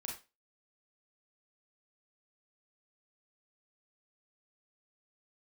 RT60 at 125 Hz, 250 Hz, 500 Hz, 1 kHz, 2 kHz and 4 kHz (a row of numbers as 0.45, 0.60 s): 0.20, 0.30, 0.30, 0.25, 0.25, 0.25 s